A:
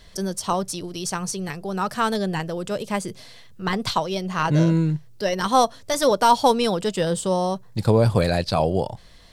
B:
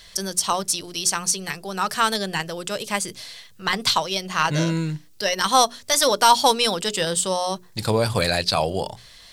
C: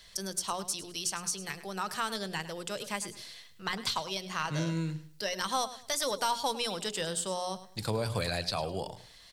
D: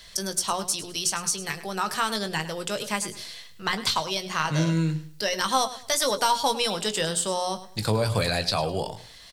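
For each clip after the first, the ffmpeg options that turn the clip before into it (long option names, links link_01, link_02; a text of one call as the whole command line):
ffmpeg -i in.wav -af "tiltshelf=frequency=1100:gain=-7,bandreject=frequency=60:width_type=h:width=6,bandreject=frequency=120:width_type=h:width=6,bandreject=frequency=180:width_type=h:width=6,bandreject=frequency=240:width_type=h:width=6,bandreject=frequency=300:width_type=h:width=6,bandreject=frequency=360:width_type=h:width=6,bandreject=frequency=420:width_type=h:width=6,volume=2dB" out.wav
ffmpeg -i in.wav -filter_complex "[0:a]acrossover=split=140[link_01][link_02];[link_02]acompressor=threshold=-23dB:ratio=2[link_03];[link_01][link_03]amix=inputs=2:normalize=0,aecho=1:1:104|208|312:0.188|0.0509|0.0137,volume=-8.5dB" out.wav
ffmpeg -i in.wav -filter_complex "[0:a]asplit=2[link_01][link_02];[link_02]adelay=19,volume=-10.5dB[link_03];[link_01][link_03]amix=inputs=2:normalize=0,volume=7dB" out.wav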